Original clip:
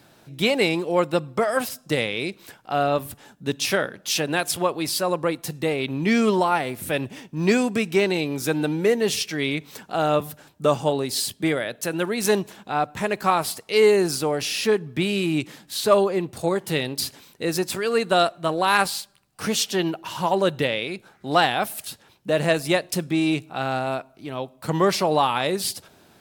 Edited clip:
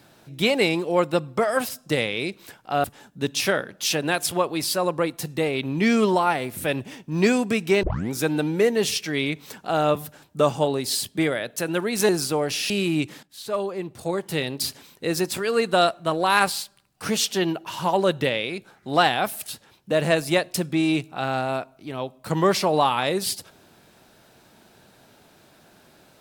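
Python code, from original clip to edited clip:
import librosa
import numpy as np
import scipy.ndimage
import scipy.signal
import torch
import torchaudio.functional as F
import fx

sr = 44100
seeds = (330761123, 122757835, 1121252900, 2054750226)

y = fx.edit(x, sr, fx.cut(start_s=2.84, length_s=0.25),
    fx.tape_start(start_s=8.08, length_s=0.29),
    fx.cut(start_s=12.34, length_s=1.66),
    fx.cut(start_s=14.61, length_s=0.47),
    fx.fade_in_from(start_s=15.61, length_s=1.45, floor_db=-16.0), tone=tone)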